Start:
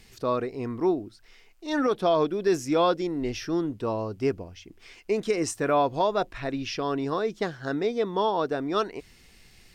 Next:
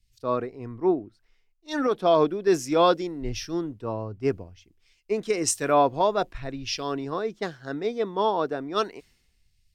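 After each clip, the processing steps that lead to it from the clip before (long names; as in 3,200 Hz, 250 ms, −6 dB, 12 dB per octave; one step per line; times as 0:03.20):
multiband upward and downward expander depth 100%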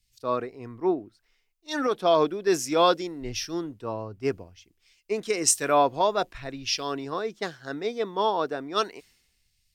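spectral tilt +1.5 dB per octave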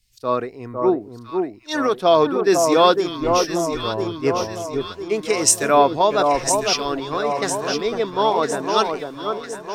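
delay that swaps between a low-pass and a high-pass 503 ms, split 1,300 Hz, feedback 71%, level −4 dB
level +6 dB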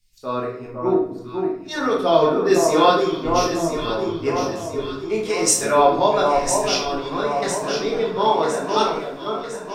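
rectangular room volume 120 cubic metres, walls mixed, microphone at 1.3 metres
level −6 dB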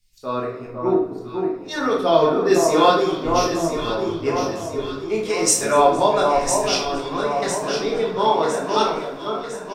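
echo with shifted repeats 232 ms, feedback 61%, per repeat +49 Hz, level −22 dB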